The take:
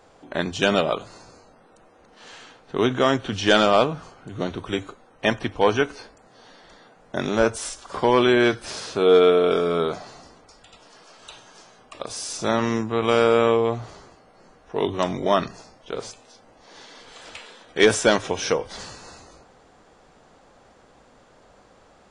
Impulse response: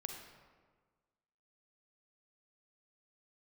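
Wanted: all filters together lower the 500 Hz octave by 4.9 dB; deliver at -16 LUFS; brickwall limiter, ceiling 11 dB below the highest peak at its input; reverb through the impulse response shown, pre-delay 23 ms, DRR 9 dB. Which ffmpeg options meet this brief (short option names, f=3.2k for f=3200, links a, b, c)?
-filter_complex "[0:a]equalizer=f=500:t=o:g=-6,alimiter=limit=-17.5dB:level=0:latency=1,asplit=2[a][b];[1:a]atrim=start_sample=2205,adelay=23[c];[b][c]afir=irnorm=-1:irlink=0,volume=-7dB[d];[a][d]amix=inputs=2:normalize=0,volume=14.5dB"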